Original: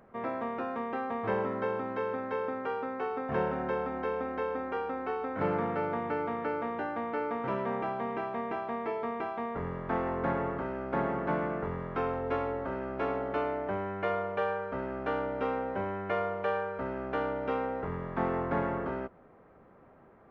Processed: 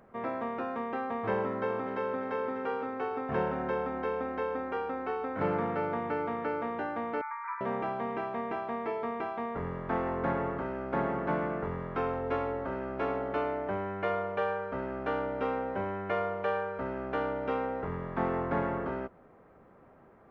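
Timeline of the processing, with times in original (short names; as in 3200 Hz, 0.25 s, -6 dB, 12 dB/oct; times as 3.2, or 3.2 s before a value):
1.07–2.23 echo throw 0.59 s, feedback 55%, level -11.5 dB
7.21–7.61 brick-wall FIR band-pass 840–2500 Hz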